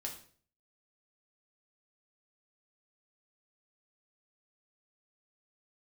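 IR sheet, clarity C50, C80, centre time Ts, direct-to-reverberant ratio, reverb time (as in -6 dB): 8.5 dB, 12.5 dB, 19 ms, -0.5 dB, 0.50 s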